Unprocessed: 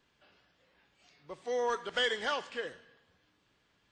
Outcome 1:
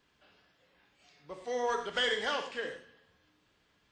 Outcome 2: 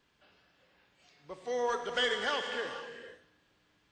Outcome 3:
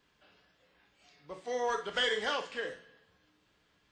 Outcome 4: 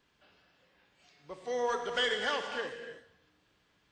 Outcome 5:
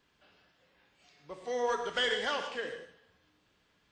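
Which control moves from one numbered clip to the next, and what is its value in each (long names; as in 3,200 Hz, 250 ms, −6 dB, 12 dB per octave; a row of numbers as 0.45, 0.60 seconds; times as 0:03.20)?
reverb whose tail is shaped and stops, gate: 130, 520, 80, 340, 200 milliseconds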